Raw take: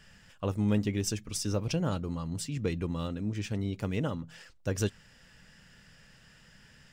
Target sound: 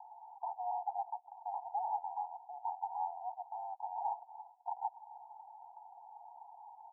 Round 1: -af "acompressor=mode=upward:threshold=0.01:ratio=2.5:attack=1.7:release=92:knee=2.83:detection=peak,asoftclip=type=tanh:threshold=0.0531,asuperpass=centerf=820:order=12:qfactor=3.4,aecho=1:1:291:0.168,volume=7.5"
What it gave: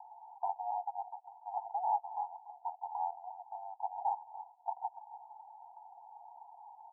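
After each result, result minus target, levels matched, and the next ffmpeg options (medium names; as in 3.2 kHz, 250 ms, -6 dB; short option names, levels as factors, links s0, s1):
echo-to-direct +11 dB; saturation: distortion -8 dB
-af "acompressor=mode=upward:threshold=0.01:ratio=2.5:attack=1.7:release=92:knee=2.83:detection=peak,asoftclip=type=tanh:threshold=0.0531,asuperpass=centerf=820:order=12:qfactor=3.4,aecho=1:1:291:0.0473,volume=7.5"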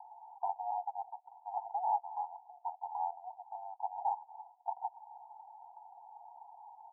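saturation: distortion -8 dB
-af "acompressor=mode=upward:threshold=0.01:ratio=2.5:attack=1.7:release=92:knee=2.83:detection=peak,asoftclip=type=tanh:threshold=0.0168,asuperpass=centerf=820:order=12:qfactor=3.4,aecho=1:1:291:0.0473,volume=7.5"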